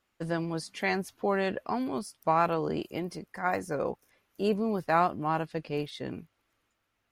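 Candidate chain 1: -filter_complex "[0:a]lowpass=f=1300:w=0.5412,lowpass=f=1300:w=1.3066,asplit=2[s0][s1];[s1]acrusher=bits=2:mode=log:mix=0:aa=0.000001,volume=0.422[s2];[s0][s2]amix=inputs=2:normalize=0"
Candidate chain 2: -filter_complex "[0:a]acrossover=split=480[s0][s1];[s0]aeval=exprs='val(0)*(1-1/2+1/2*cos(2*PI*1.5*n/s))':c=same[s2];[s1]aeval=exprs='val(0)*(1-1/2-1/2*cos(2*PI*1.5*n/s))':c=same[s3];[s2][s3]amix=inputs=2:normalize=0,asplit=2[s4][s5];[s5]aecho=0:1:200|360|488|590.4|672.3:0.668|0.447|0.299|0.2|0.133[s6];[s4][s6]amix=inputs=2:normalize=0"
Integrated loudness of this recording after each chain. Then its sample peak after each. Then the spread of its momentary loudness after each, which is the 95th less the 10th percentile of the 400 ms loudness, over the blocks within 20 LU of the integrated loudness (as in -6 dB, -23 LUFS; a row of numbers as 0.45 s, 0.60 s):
-28.5 LUFS, -32.0 LUFS; -9.5 dBFS, -13.0 dBFS; 11 LU, 13 LU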